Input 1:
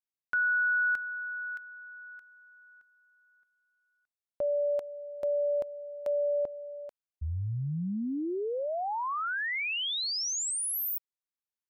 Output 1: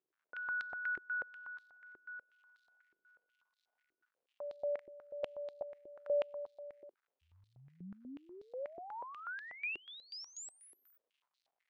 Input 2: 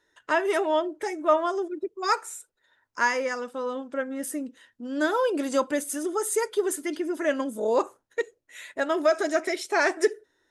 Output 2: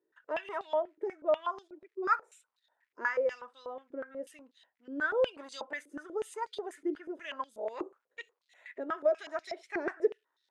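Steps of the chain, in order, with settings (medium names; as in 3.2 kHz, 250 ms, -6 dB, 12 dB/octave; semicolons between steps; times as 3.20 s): crackle 310 per s -57 dBFS; step-sequenced band-pass 8.2 Hz 370–4000 Hz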